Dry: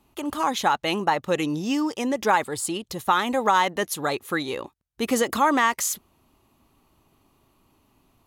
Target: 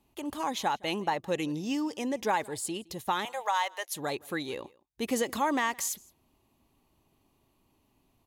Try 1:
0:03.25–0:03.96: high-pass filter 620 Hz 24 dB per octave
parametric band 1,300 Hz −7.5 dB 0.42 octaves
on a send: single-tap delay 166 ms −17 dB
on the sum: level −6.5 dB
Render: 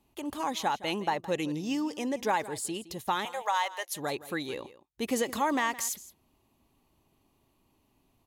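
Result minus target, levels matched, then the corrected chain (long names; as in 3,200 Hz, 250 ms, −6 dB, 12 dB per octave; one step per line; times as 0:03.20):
echo-to-direct +8 dB
0:03.25–0:03.96: high-pass filter 620 Hz 24 dB per octave
parametric band 1,300 Hz −7.5 dB 0.42 octaves
on a send: single-tap delay 166 ms −25 dB
on the sum: level −6.5 dB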